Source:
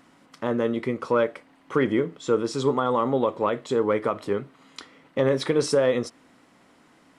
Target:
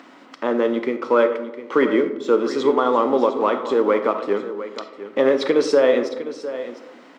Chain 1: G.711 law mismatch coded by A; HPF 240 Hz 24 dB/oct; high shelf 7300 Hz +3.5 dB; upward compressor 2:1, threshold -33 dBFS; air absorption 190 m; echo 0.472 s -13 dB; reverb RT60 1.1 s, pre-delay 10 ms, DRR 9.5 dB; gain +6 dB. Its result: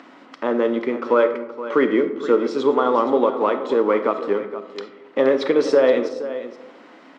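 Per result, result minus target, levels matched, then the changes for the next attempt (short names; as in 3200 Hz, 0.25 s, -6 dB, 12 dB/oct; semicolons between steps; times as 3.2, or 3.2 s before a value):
echo 0.234 s early; 8000 Hz band -5.0 dB
change: echo 0.706 s -13 dB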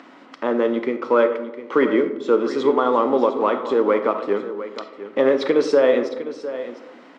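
8000 Hz band -4.5 dB
change: high shelf 7300 Hz +15 dB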